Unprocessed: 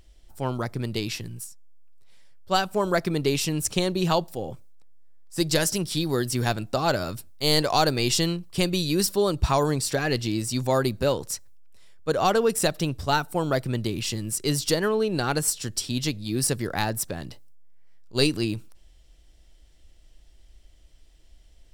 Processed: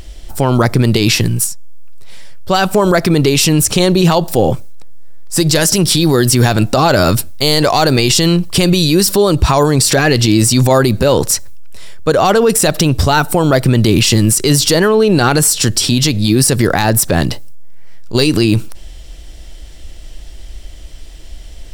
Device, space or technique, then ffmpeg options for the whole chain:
loud club master: -af "acompressor=threshold=-25dB:ratio=2,asoftclip=type=hard:threshold=-15dB,alimiter=level_in=23.5dB:limit=-1dB:release=50:level=0:latency=1,volume=-1dB"

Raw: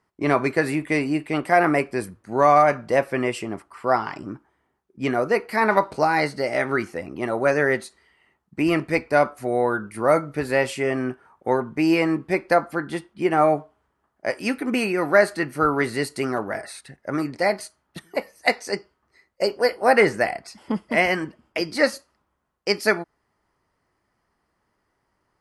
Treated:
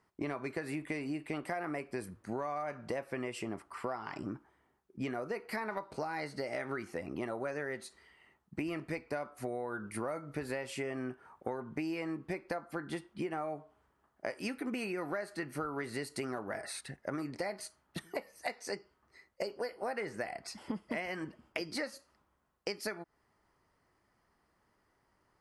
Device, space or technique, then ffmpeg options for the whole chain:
serial compression, leveller first: -af "acompressor=threshold=-23dB:ratio=2,acompressor=threshold=-33dB:ratio=6,volume=-2dB"

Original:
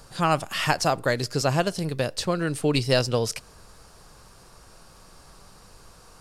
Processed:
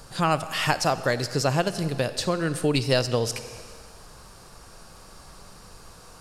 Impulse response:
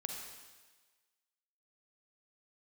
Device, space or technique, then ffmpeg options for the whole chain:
ducked reverb: -filter_complex "[0:a]asplit=3[a][b][c];[1:a]atrim=start_sample=2205[d];[b][d]afir=irnorm=-1:irlink=0[e];[c]apad=whole_len=273769[f];[e][f]sidechaincompress=threshold=-29dB:ratio=4:attack=30:release=564,volume=2dB[g];[a][g]amix=inputs=2:normalize=0,volume=-3dB"

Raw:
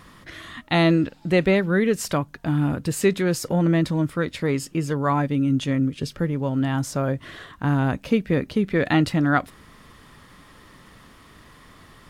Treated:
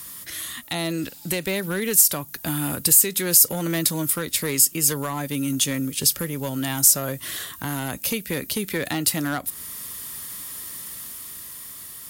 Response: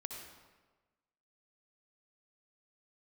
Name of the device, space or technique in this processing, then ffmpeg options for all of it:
FM broadcast chain: -filter_complex "[0:a]highpass=43,dynaudnorm=f=200:g=13:m=4dB,acrossover=split=300|1000[a][b][c];[a]acompressor=threshold=-24dB:ratio=4[d];[b]acompressor=threshold=-21dB:ratio=4[e];[c]acompressor=threshold=-28dB:ratio=4[f];[d][e][f]amix=inputs=3:normalize=0,aemphasis=mode=production:type=75fm,alimiter=limit=-12dB:level=0:latency=1:release=368,asoftclip=type=hard:threshold=-15.5dB,lowpass=f=15k:w=0.5412,lowpass=f=15k:w=1.3066,aemphasis=mode=production:type=75fm,volume=-3dB"

